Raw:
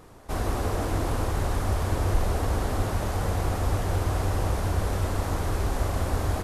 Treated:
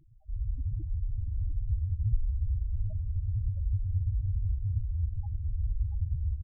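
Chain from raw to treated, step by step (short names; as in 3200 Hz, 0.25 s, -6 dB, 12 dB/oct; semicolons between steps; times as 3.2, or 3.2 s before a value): loudest bins only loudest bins 2; echo 0.684 s -10.5 dB; record warp 45 rpm, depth 250 cents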